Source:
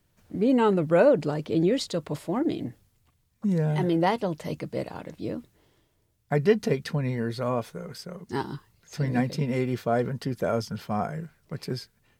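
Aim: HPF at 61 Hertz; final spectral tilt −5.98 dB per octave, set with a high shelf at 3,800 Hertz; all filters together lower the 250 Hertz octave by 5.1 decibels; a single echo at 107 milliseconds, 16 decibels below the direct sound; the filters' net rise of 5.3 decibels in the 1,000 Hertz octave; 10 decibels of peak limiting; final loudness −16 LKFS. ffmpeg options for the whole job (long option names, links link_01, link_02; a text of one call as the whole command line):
ffmpeg -i in.wav -af "highpass=61,equalizer=frequency=250:width_type=o:gain=-7.5,equalizer=frequency=1000:width_type=o:gain=8,highshelf=frequency=3800:gain=-5.5,alimiter=limit=-16.5dB:level=0:latency=1,aecho=1:1:107:0.158,volume=14dB" out.wav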